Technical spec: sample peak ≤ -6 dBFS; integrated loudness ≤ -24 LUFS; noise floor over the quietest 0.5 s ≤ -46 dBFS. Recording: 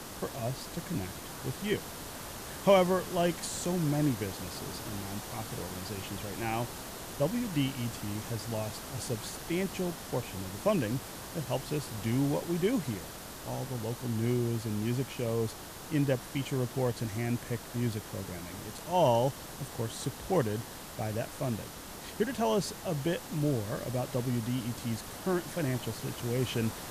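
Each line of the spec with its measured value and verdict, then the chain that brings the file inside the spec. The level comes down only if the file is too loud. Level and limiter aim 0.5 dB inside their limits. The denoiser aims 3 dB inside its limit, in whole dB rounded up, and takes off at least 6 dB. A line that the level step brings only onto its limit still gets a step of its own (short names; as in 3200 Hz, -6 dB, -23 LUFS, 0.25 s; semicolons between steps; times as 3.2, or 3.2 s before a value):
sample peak -11.5 dBFS: OK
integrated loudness -33.0 LUFS: OK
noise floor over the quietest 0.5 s -44 dBFS: fail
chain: denoiser 6 dB, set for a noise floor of -44 dBFS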